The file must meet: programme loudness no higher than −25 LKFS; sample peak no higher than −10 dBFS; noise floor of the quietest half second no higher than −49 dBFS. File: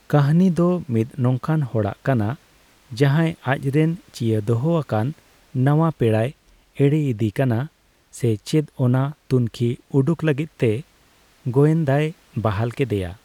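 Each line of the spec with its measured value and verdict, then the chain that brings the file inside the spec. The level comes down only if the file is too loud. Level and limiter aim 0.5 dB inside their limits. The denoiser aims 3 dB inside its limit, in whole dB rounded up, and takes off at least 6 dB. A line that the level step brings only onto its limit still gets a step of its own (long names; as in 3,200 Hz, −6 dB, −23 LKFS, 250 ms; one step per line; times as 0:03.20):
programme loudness −21.0 LKFS: out of spec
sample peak −5.5 dBFS: out of spec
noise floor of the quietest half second −56 dBFS: in spec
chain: level −4.5 dB
brickwall limiter −10.5 dBFS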